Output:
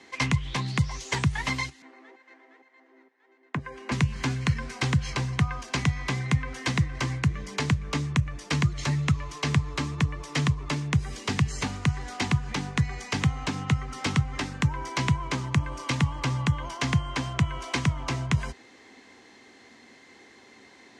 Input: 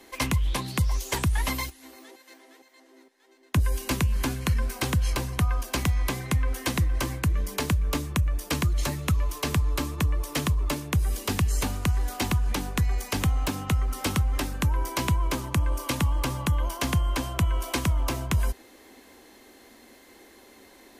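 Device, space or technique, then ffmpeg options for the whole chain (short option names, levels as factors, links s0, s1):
car door speaker: -filter_complex "[0:a]asettb=1/sr,asplit=3[s0][s1][s2];[s0]atrim=end=1.824[s3];[s1]atrim=start=1.82:end=3.92,asetpts=PTS-STARTPTS,afade=t=in:d=0.004:c=qsin,afade=t=out:st=2.096:d=0.004:c=qsin,acrossover=split=210 2300:gain=0.126 1 0.126[s4][s5][s6];[s4][s5][s6]amix=inputs=3:normalize=0[s7];[s2]atrim=start=3.916[s8];[s3][s7]acrossfade=d=0.004:c1=hsin:c2=qsin[s9];[s9][s8]acrossfade=d=0.004:c1=qsin:c2=hsin,highpass=96,equalizer=f=140:t=q:w=4:g=10,equalizer=f=330:t=q:w=4:g=-4,equalizer=f=570:t=q:w=4:g=-6,equalizer=f=2000:t=q:w=4:g=5,lowpass=f=7100:w=0.5412,lowpass=f=7100:w=1.3066"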